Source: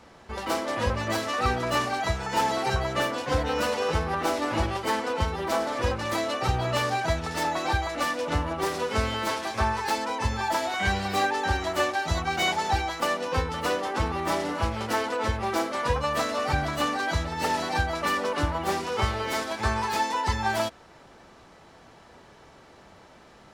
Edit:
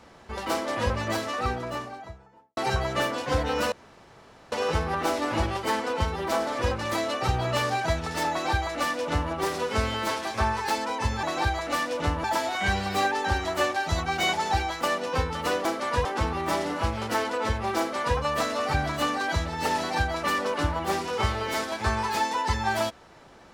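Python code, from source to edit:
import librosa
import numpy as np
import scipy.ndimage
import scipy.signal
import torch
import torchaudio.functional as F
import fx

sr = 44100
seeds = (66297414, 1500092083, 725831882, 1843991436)

y = fx.studio_fade_out(x, sr, start_s=0.95, length_s=1.62)
y = fx.edit(y, sr, fx.insert_room_tone(at_s=3.72, length_s=0.8),
    fx.duplicate(start_s=7.51, length_s=1.01, to_s=10.43),
    fx.duplicate(start_s=15.57, length_s=0.4, to_s=13.84), tone=tone)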